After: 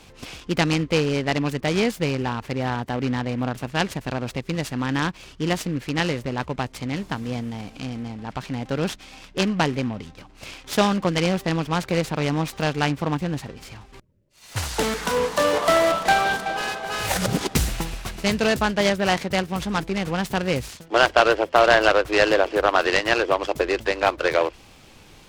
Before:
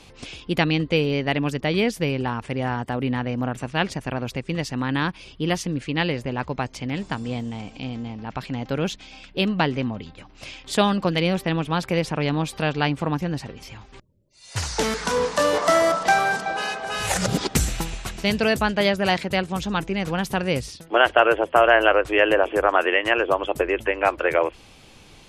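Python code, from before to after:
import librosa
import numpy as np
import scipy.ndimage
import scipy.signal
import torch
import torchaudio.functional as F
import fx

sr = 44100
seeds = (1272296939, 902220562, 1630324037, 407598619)

y = fx.noise_mod_delay(x, sr, seeds[0], noise_hz=1700.0, depth_ms=0.037)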